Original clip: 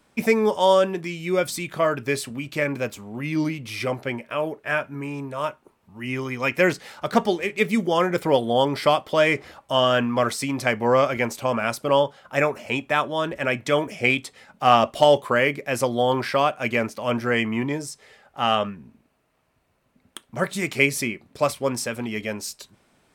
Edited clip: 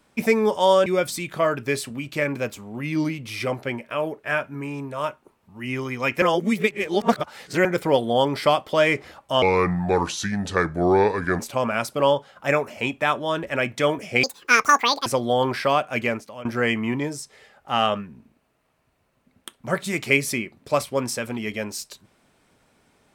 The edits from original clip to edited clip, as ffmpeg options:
ffmpeg -i in.wav -filter_complex "[0:a]asplit=9[link_01][link_02][link_03][link_04][link_05][link_06][link_07][link_08][link_09];[link_01]atrim=end=0.862[link_10];[link_02]atrim=start=1.258:end=6.622[link_11];[link_03]atrim=start=6.618:end=8.052,asetpts=PTS-STARTPTS,areverse[link_12];[link_04]atrim=start=8.048:end=9.824[link_13];[link_05]atrim=start=9.82:end=11.28,asetpts=PTS-STARTPTS,asetrate=32634,aresample=44100,atrim=end_sample=87008,asetpts=PTS-STARTPTS[link_14];[link_06]atrim=start=11.276:end=14.124[link_15];[link_07]atrim=start=14.12:end=15.75,asetpts=PTS-STARTPTS,asetrate=86877,aresample=44100[link_16];[link_08]atrim=start=15.746:end=17.14,asetpts=PTS-STARTPTS,afade=type=out:start_time=0.954:duration=0.44:silence=0.11885[link_17];[link_09]atrim=start=17.14,asetpts=PTS-STARTPTS,afade=type=in:duration=0.004:curve=hsin:silence=0.11885[link_18];[link_10][link_11]acrossfade=duration=0.004:curve1=hsin:curve2=hsin[link_19];[link_19][link_12]acrossfade=duration=0.004:curve1=hsin:curve2=hsin[link_20];[link_20][link_13]acrossfade=duration=0.004:curve1=hsin:curve2=hsin[link_21];[link_21][link_14]acrossfade=duration=0.004:curve1=hsin:curve2=hsin[link_22];[link_22][link_15]acrossfade=duration=0.004:curve1=hsin:curve2=hsin[link_23];[link_23][link_16]acrossfade=duration=0.004:curve1=hsin:curve2=hsin[link_24];[link_17][link_18]concat=n=2:v=0:a=1[link_25];[link_24][link_25]acrossfade=duration=0.004:curve1=hsin:curve2=hsin" out.wav

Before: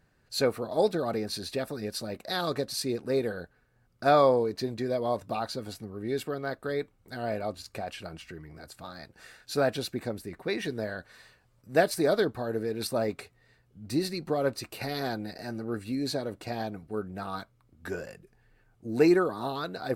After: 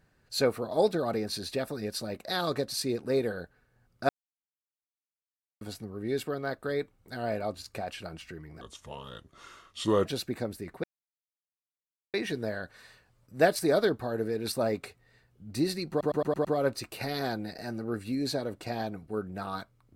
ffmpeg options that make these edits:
ffmpeg -i in.wav -filter_complex "[0:a]asplit=11[link_01][link_02][link_03][link_04][link_05][link_06][link_07][link_08][link_09][link_10][link_11];[link_01]atrim=end=4.09,asetpts=PTS-STARTPTS,afade=type=out:start_time=4.086:duration=0.004:curve=hsin[link_12];[link_02]atrim=start=4.09:end=5.61,asetpts=PTS-STARTPTS,volume=0[link_13];[link_03]atrim=start=5.61:end=8.614,asetpts=PTS-STARTPTS,afade=type=in:duration=0.004:curve=hsin[link_14];[link_04]atrim=start=8.61:end=9.71,asetpts=PTS-STARTPTS,asetrate=33516,aresample=44100[link_15];[link_05]atrim=start=9.706:end=10.49,asetpts=PTS-STARTPTS,afade=type=out:start_time=0.78:duration=0.004:curve=hsin,apad=pad_dur=1.3[link_16];[link_06]atrim=start=10.49:end=14.362,asetpts=PTS-STARTPTS,afade=type=in:duration=0.004:curve=hsin[link_17];[link_07]atrim=start=14.248:end=14.362[link_18];[link_08]atrim=start=14.248:end=14.362[link_19];[link_09]atrim=start=14.248:end=14.362[link_20];[link_10]atrim=start=14.248:end=14.362[link_21];[link_11]atrim=start=14.248[link_22];[link_12][link_13][link_14]concat=n=3:v=0:a=1[link_23];[link_23][link_15]acrossfade=duration=0.004:curve1=hsin:curve2=hsin[link_24];[link_16][link_17]concat=n=2:v=0:a=1[link_25];[link_24][link_25]acrossfade=duration=0.004:curve1=hsin:curve2=hsin[link_26];[link_26][link_18]acrossfade=duration=0.004:curve1=hsin:curve2=hsin[link_27];[link_27][link_19]acrossfade=duration=0.004:curve1=hsin:curve2=hsin[link_28];[link_28][link_20]acrossfade=duration=0.004:curve1=hsin:curve2=hsin[link_29];[link_29][link_21]acrossfade=duration=0.004:curve1=hsin:curve2=hsin[link_30];[link_30][link_22]acrossfade=duration=0.004:curve1=hsin:curve2=hsin" out.wav

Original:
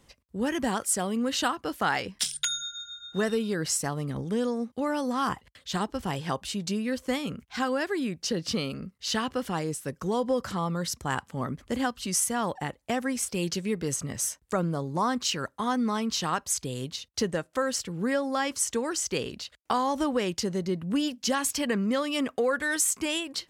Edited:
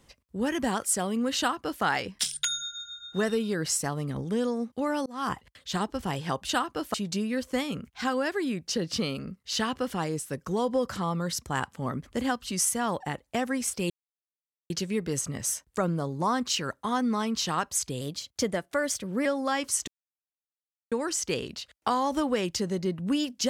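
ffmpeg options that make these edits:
ffmpeg -i in.wav -filter_complex "[0:a]asplit=8[link_01][link_02][link_03][link_04][link_05][link_06][link_07][link_08];[link_01]atrim=end=5.06,asetpts=PTS-STARTPTS,afade=type=out:start_time=5.056:duration=0.004:curve=hsin[link_09];[link_02]atrim=start=5.06:end=6.492,asetpts=PTS-STARTPTS,afade=type=in:duration=0.26[link_10];[link_03]atrim=start=1.378:end=1.832[link_11];[link_04]atrim=start=6.488:end=13.45,asetpts=PTS-STARTPTS,afade=type=out:start_time=6.958:duration=0.004:curve=hsin,apad=pad_dur=0.8[link_12];[link_05]atrim=start=13.45:end=16.764,asetpts=PTS-STARTPTS,afade=type=in:duration=0.004:curve=hsin[link_13];[link_06]atrim=start=16.76:end=18.13,asetpts=PTS-STARTPTS,asetrate=48510,aresample=44100[link_14];[link_07]atrim=start=18.126:end=18.75,asetpts=PTS-STARTPTS,afade=type=out:start_time=0.62:duration=0.004:curve=hsin,apad=pad_dur=1.04[link_15];[link_08]atrim=start=18.75,asetpts=PTS-STARTPTS,afade=type=in:duration=0.004:curve=hsin[link_16];[link_09][link_10]concat=n=2:v=0:a=1[link_17];[link_17][link_11]acrossfade=duration=0.004:curve1=hsin:curve2=hsin[link_18];[link_12][link_13]concat=n=2:v=0:a=1[link_19];[link_18][link_19]acrossfade=duration=0.004:curve1=hsin:curve2=hsin[link_20];[link_20][link_14]acrossfade=duration=0.004:curve1=hsin:curve2=hsin[link_21];[link_15][link_16]concat=n=2:v=0:a=1[link_22];[link_21][link_22]acrossfade=duration=0.004:curve1=hsin:curve2=hsin" out.wav

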